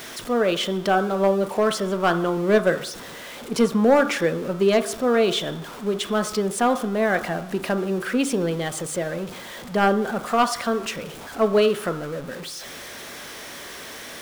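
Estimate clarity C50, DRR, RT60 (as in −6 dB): 12.5 dB, 8.5 dB, 0.70 s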